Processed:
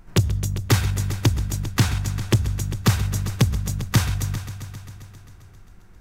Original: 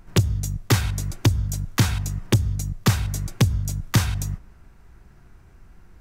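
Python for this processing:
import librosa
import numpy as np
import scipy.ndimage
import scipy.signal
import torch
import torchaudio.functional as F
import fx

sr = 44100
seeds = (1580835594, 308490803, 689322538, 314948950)

y = fx.echo_heads(x, sr, ms=133, heads='all three', feedback_pct=55, wet_db=-17)
y = fx.doppler_dist(y, sr, depth_ms=0.18, at=(1.71, 2.43))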